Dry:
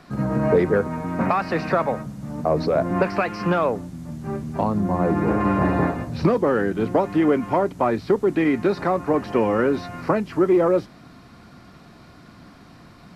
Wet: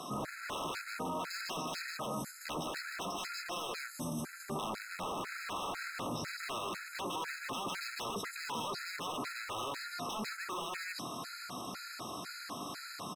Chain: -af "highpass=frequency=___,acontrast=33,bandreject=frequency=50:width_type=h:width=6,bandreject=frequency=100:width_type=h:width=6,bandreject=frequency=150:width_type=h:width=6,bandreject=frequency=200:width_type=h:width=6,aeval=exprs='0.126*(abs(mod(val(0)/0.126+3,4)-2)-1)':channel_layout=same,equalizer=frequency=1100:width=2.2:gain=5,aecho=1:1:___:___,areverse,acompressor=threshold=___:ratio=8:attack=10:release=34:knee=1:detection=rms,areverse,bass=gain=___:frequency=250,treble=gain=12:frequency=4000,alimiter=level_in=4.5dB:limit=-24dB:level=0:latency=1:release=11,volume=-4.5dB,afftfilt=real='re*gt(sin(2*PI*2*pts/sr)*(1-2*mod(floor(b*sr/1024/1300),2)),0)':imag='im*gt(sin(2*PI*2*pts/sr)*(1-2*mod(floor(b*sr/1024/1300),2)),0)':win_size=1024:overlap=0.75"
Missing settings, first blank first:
110, 153, 0.631, -30dB, -9